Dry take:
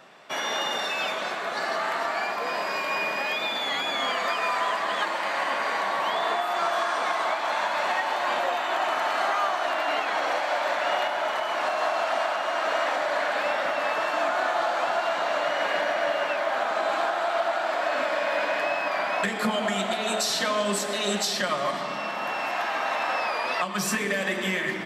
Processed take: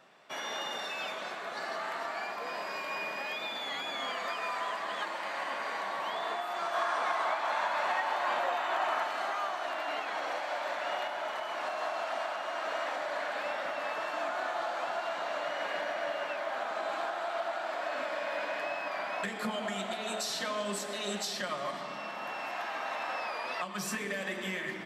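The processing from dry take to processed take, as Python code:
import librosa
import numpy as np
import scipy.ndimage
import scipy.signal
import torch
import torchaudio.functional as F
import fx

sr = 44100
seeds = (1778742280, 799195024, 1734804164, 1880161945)

y = fx.peak_eq(x, sr, hz=1100.0, db=5.0, octaves=2.2, at=(6.74, 9.04))
y = F.gain(torch.from_numpy(y), -9.0).numpy()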